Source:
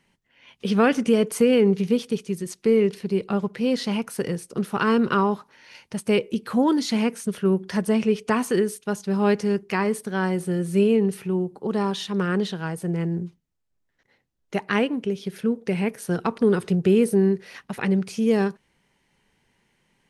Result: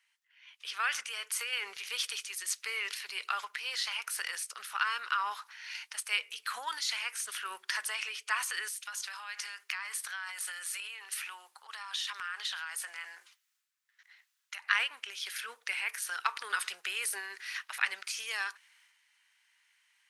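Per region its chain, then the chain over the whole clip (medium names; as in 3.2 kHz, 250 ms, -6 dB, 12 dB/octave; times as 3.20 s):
8.68–14.68 s: high-pass 690 Hz + compression, threshold -37 dBFS
whole clip: high-pass 1.3 kHz 24 dB/octave; gain riding within 5 dB 0.5 s; transient shaper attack +2 dB, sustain +7 dB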